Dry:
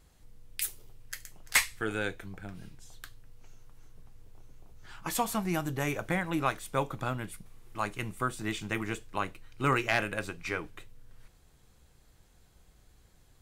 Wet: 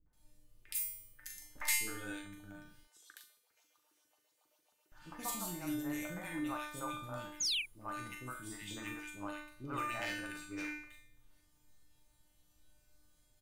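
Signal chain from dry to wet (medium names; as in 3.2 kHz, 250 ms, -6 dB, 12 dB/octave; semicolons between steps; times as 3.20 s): treble shelf 8.6 kHz +8.5 dB; feedback comb 300 Hz, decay 0.6 s, mix 90%; de-hum 70.5 Hz, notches 16; 2.83–4.92 s: LFO high-pass saw up 7.4 Hz 360–4700 Hz; 7.27–7.49 s: painted sound fall 2.2–7.1 kHz -39 dBFS; doubling 40 ms -9 dB; three bands offset in time lows, mids, highs 60/130 ms, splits 440/1700 Hz; trim +5 dB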